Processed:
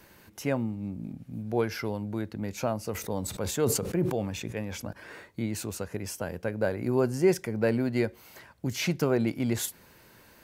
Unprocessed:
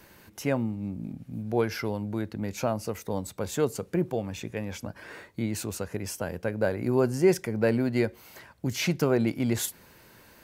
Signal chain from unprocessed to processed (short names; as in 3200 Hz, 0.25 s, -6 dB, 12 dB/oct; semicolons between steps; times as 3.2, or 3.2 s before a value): 2.91–4.93 sustainer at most 47 dB/s; gain -1.5 dB